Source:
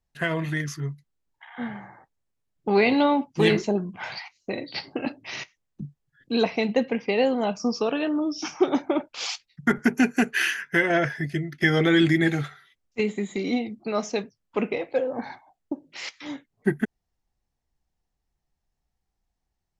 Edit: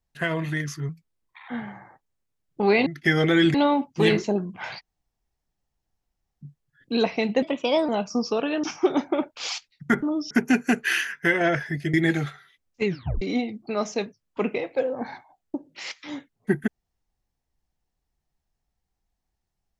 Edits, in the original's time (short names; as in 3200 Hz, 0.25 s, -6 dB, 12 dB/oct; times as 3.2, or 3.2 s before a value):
0.89–1.56 speed 113%
4.18–5.84 room tone, crossfade 0.06 s
6.82–7.38 speed 121%
8.13–8.41 move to 9.8
11.43–12.11 move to 2.94
13.03 tape stop 0.36 s